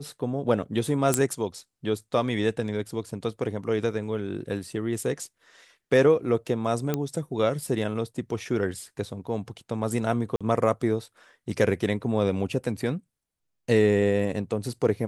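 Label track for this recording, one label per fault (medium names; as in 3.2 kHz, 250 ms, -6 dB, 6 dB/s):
1.140000	1.140000	pop -7 dBFS
6.940000	6.940000	pop -12 dBFS
10.360000	10.410000	dropout 46 ms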